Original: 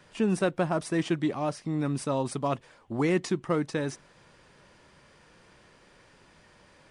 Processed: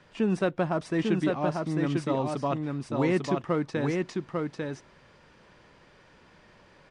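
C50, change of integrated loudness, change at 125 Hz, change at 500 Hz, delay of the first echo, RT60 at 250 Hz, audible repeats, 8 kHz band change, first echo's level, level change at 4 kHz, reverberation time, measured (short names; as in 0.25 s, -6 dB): none, +0.5 dB, +1.5 dB, +1.5 dB, 0.847 s, none, 1, -6.5 dB, -3.5 dB, -1.0 dB, none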